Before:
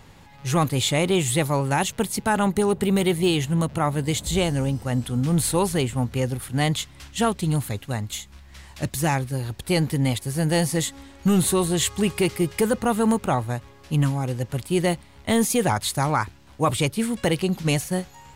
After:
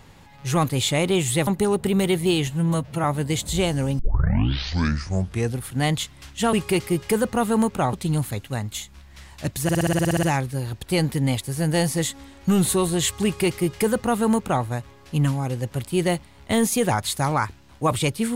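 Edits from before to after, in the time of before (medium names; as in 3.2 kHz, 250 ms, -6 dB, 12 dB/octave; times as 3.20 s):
1.47–2.44 s: delete
3.44–3.82 s: stretch 1.5×
4.77 s: tape start 1.59 s
9.01 s: stutter 0.06 s, 11 plays
12.02–13.42 s: copy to 7.31 s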